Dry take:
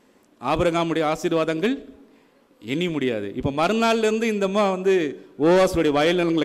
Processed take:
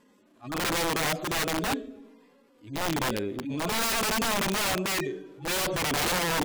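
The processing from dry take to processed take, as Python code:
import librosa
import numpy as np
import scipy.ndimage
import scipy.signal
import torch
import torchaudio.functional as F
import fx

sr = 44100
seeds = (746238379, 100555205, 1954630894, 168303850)

y = fx.hpss_only(x, sr, part='harmonic')
y = (np.mod(10.0 ** (20.5 / 20.0) * y + 1.0, 2.0) - 1.0) / 10.0 ** (20.5 / 20.0)
y = fx.transient(y, sr, attack_db=-8, sustain_db=3)
y = y * 10.0 ** (-1.0 / 20.0)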